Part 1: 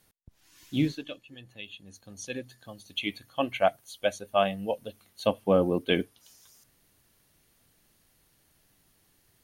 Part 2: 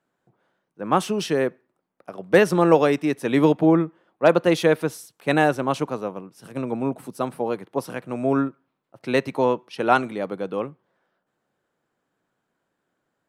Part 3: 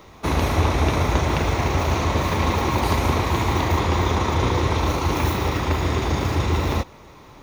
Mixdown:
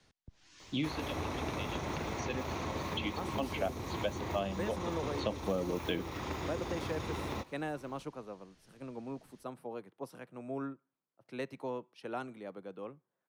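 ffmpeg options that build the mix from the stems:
-filter_complex "[0:a]lowpass=f=6600:w=0.5412,lowpass=f=6600:w=1.3066,volume=1.12[s0];[1:a]adelay=2250,volume=0.141[s1];[2:a]adelay=600,volume=0.237[s2];[s0][s1][s2]amix=inputs=3:normalize=0,acrossover=split=120|440|5100[s3][s4][s5][s6];[s3]acompressor=threshold=0.00355:ratio=4[s7];[s4]acompressor=threshold=0.0141:ratio=4[s8];[s5]acompressor=threshold=0.0126:ratio=4[s9];[s6]acompressor=threshold=0.00178:ratio=4[s10];[s7][s8][s9][s10]amix=inputs=4:normalize=0"

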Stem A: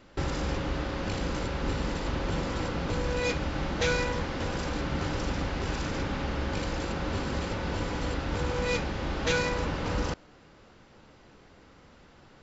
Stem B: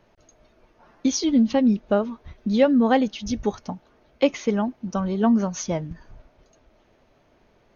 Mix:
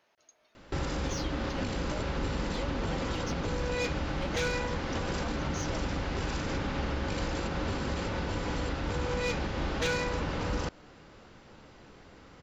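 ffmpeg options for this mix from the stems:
-filter_complex "[0:a]volume=10.6,asoftclip=hard,volume=0.0944,adelay=550,volume=1.26[s0];[1:a]highpass=f=1400:p=1,alimiter=limit=0.075:level=0:latency=1:release=25,asoftclip=type=tanh:threshold=0.0473,volume=0.708[s1];[s0][s1]amix=inputs=2:normalize=0,alimiter=limit=0.0708:level=0:latency=1:release=179"

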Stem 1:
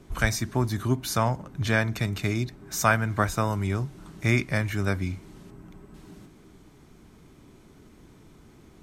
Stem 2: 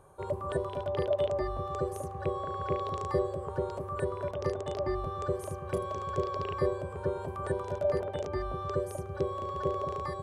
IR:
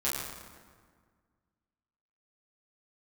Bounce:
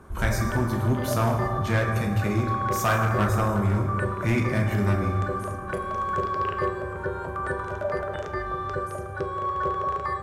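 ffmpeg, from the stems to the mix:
-filter_complex "[0:a]equalizer=f=4300:w=0.55:g=-7.5,volume=0.668,asplit=3[s0][s1][s2];[s1]volume=0.562[s3];[1:a]equalizer=f=1500:w=1.4:g=14.5,volume=0.794,asplit=2[s4][s5];[s5]volume=0.266[s6];[s2]apad=whole_len=450988[s7];[s4][s7]sidechaincompress=threshold=0.0178:ratio=8:attack=16:release=155[s8];[2:a]atrim=start_sample=2205[s9];[s3][s6]amix=inputs=2:normalize=0[s10];[s10][s9]afir=irnorm=-1:irlink=0[s11];[s0][s8][s11]amix=inputs=3:normalize=0,asoftclip=type=hard:threshold=0.15"

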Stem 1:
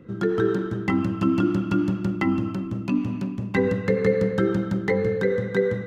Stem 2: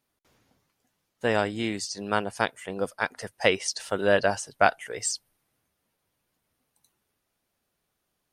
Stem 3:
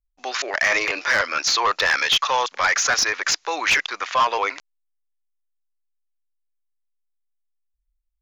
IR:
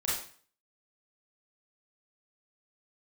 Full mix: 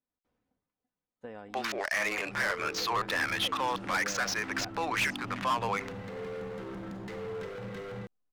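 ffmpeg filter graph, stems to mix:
-filter_complex "[0:a]alimiter=limit=0.0891:level=0:latency=1,asoftclip=type=hard:threshold=0.0211,adelay=2200,volume=0.376,asplit=2[s0][s1];[s1]volume=0.355[s2];[1:a]lowpass=f=1100:p=1,aecho=1:1:4:0.42,acompressor=threshold=0.0447:ratio=6,volume=0.211,asplit=2[s3][s4];[2:a]adynamicsmooth=sensitivity=2.5:basefreq=1200,alimiter=limit=0.0944:level=0:latency=1:release=87,adynamicequalizer=threshold=0.0158:dfrequency=3200:dqfactor=0.7:tfrequency=3200:tqfactor=0.7:attack=5:release=100:ratio=0.375:range=2:mode=cutabove:tftype=highshelf,adelay=1300,volume=0.708[s5];[s4]apad=whole_len=355883[s6];[s0][s6]sidechaincompress=threshold=0.00251:ratio=8:attack=16:release=238[s7];[3:a]atrim=start_sample=2205[s8];[s2][s8]afir=irnorm=-1:irlink=0[s9];[s7][s3][s5][s9]amix=inputs=4:normalize=0"

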